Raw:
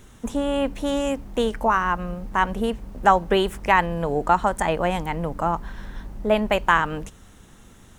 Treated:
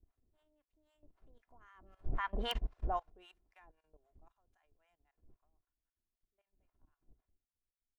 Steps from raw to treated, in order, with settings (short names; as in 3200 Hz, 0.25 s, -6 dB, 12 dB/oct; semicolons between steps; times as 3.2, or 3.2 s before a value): median filter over 5 samples; Doppler pass-by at 2.63, 18 m/s, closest 1.5 m; wind noise 100 Hz -40 dBFS; Doppler pass-by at 2.32, 8 m/s, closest 2.7 m; harmonic tremolo 3.8 Hz, depth 100%, crossover 730 Hz; dynamic EQ 310 Hz, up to -6 dB, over -57 dBFS, Q 1.4; treble ducked by the level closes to 3000 Hz, closed at -33.5 dBFS; bell 110 Hz -13.5 dB 2.3 oct; level quantiser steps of 16 dB; wrapped overs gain 37 dB; comb 2.9 ms, depth 41%; upward expander 2.5:1, over -53 dBFS; gain +16.5 dB